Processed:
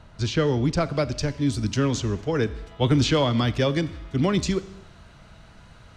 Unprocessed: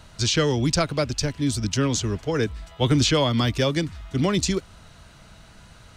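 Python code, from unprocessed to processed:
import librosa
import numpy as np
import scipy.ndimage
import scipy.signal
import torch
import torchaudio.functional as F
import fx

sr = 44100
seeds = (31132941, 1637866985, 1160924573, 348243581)

y = fx.lowpass(x, sr, hz=fx.steps((0.0, 1500.0), (0.94, 3100.0)), slope=6)
y = fx.rev_schroeder(y, sr, rt60_s=0.94, comb_ms=28, drr_db=15.5)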